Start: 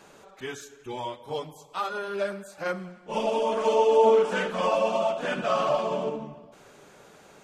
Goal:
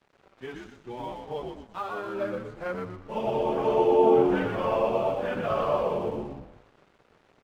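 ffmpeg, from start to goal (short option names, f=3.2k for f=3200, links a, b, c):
-filter_complex "[0:a]acrusher=bits=9:mix=0:aa=0.000001,lowpass=3.4k,tiltshelf=f=1.3k:g=3,asplit=2[a][b];[b]asplit=5[c][d][e][f][g];[c]adelay=120,afreqshift=-85,volume=-4dB[h];[d]adelay=240,afreqshift=-170,volume=-11.7dB[i];[e]adelay=360,afreqshift=-255,volume=-19.5dB[j];[f]adelay=480,afreqshift=-340,volume=-27.2dB[k];[g]adelay=600,afreqshift=-425,volume=-35dB[l];[h][i][j][k][l]amix=inputs=5:normalize=0[m];[a][m]amix=inputs=2:normalize=0,aeval=exprs='sgn(val(0))*max(abs(val(0))-0.00355,0)':c=same,volume=-4dB"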